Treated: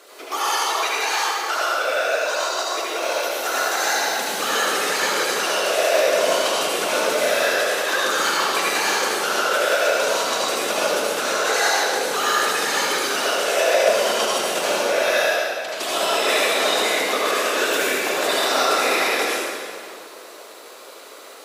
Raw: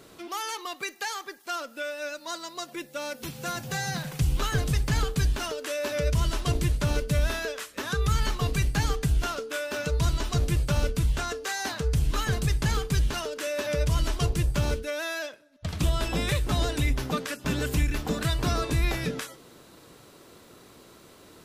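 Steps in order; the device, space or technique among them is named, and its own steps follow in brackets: whispering ghost (whisperiser; HPF 430 Hz 24 dB/oct; reverb RT60 2.3 s, pre-delay 66 ms, DRR -7 dB); gain +5.5 dB

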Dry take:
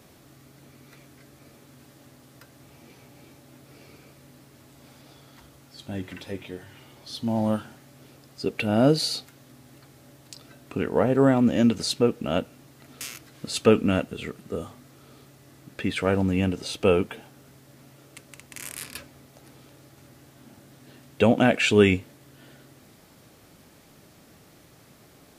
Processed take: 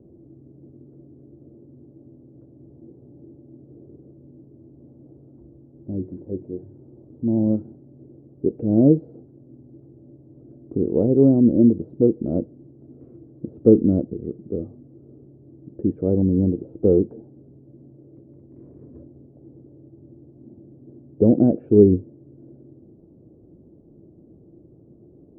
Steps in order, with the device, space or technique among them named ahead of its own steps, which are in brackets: under water (LPF 470 Hz 24 dB/oct; bell 340 Hz +9 dB 0.22 oct); gain +4.5 dB

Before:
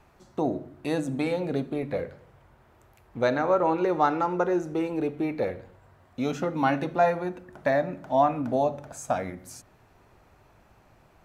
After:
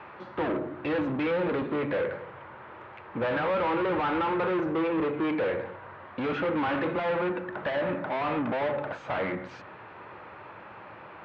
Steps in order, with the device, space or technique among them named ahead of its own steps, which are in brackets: overdrive pedal into a guitar cabinet (overdrive pedal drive 37 dB, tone 1000 Hz, clips at -8.5 dBFS; speaker cabinet 100–3400 Hz, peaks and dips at 150 Hz -5 dB, 250 Hz -8 dB, 400 Hz -5 dB, 700 Hz -10 dB); gain -7 dB

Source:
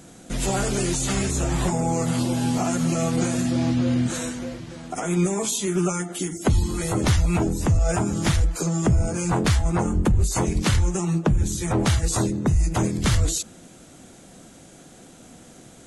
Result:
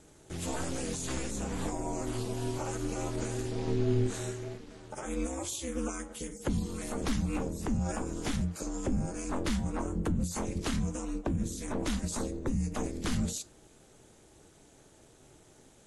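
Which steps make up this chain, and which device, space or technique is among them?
3.65–4.58 flutter echo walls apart 4.2 m, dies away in 0.24 s; alien voice (ring modulator 130 Hz; flange 1.1 Hz, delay 5.9 ms, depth 3.6 ms, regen +83%); gain -4 dB

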